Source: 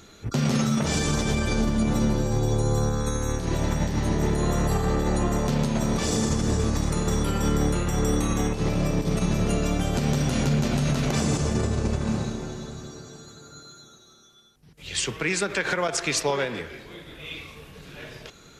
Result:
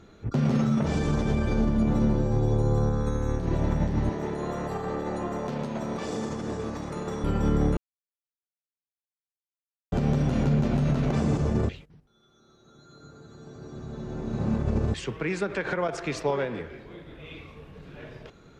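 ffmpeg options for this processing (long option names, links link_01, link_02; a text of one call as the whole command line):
ffmpeg -i in.wav -filter_complex "[0:a]asettb=1/sr,asplit=3[link_01][link_02][link_03];[link_01]atrim=end=4.094[link_04];[link_02]atrim=start=4.09:end=7.24,asetpts=PTS-STARTPTS,afade=type=in:duration=0.004:curve=qsin,afade=type=out:start_time=3.146:duration=0.004:curve=qsin,highpass=frequency=450:poles=1[link_05];[link_03]atrim=start=7.236[link_06];[link_04][link_05]acrossfade=duration=0.004:curve1=hsin:curve2=qsin[link_07];[link_07][link_06]acrossfade=duration=0.004:curve1=qsin:curve2=hsin,asplit=5[link_08][link_09][link_10][link_11][link_12];[link_08]atrim=end=7.77,asetpts=PTS-STARTPTS,afade=type=out:start_time=7.766:duration=0.004:curve=hsin[link_13];[link_09]atrim=start=7.77:end=9.92,asetpts=PTS-STARTPTS,volume=0[link_14];[link_10]atrim=start=9.92:end=11.692,asetpts=PTS-STARTPTS,afade=type=in:duration=0.004:curve=hsin[link_15];[link_11]atrim=start=11.688:end=14.942,asetpts=PTS-STARTPTS,areverse[link_16];[link_12]atrim=start=14.938[link_17];[link_13][link_14][link_15]concat=n=3:v=0:a=1[link_18];[link_18][link_16]acrossfade=duration=0.004:curve1=hsin:curve2=hsin[link_19];[link_19][link_17]acrossfade=duration=0.004:curve1=hsin:curve2=hsin,lowpass=frequency=1000:poles=1" out.wav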